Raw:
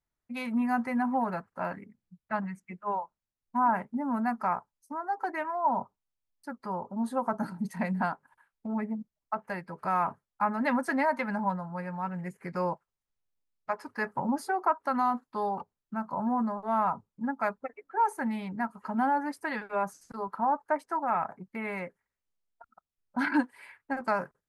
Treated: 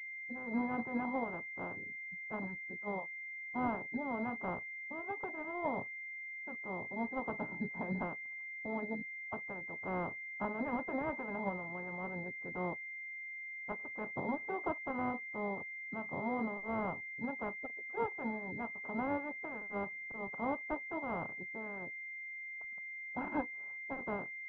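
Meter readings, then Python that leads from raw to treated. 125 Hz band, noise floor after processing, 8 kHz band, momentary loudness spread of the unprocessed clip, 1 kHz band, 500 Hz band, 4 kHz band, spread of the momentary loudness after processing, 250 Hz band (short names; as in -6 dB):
-6.5 dB, -46 dBFS, under -20 dB, 11 LU, -12.5 dB, -6.0 dB, under -15 dB, 6 LU, -8.5 dB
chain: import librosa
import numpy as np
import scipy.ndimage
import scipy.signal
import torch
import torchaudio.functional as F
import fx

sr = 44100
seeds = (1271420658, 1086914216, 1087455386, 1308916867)

y = fx.spec_clip(x, sr, under_db=18)
y = fx.air_absorb(y, sr, metres=430.0)
y = fx.pwm(y, sr, carrier_hz=2100.0)
y = F.gain(torch.from_numpy(y), -5.0).numpy()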